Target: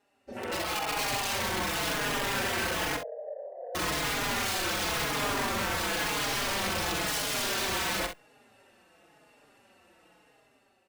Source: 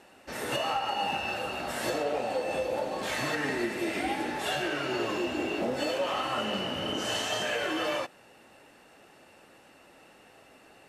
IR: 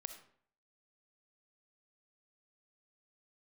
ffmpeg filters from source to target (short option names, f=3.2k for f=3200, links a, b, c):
-filter_complex "[0:a]afwtdn=0.0178,dynaudnorm=f=780:g=3:m=11.5dB,alimiter=limit=-18dB:level=0:latency=1:release=21,acontrast=69,aeval=exprs='(mod(6.68*val(0)+1,2)-1)/6.68':c=same,asettb=1/sr,asplit=3[a][b][c];[a]atrim=end=2.964[d];[b]atrim=start=2.96:end=3.75,asetpts=PTS-STARTPTS,afade=t=in:d=0.004:c=qsin,afade=t=out:st=0.786:d=0.004:c=qsin,asuperpass=centerf=570:order=8:qfactor=2.5[e];[c]atrim=start=3.746[f];[d][e]acrossfade=d=0.004:c1=hsin:c2=qsin[g];[g][f]acrossfade=d=0.004:c1=qsin:c2=hsin,asoftclip=type=tanh:threshold=-20.5dB,aecho=1:1:45|66:0.398|0.282,asplit=2[h][i];[i]adelay=4.4,afreqshift=-0.96[j];[h][j]amix=inputs=2:normalize=1,volume=-4dB"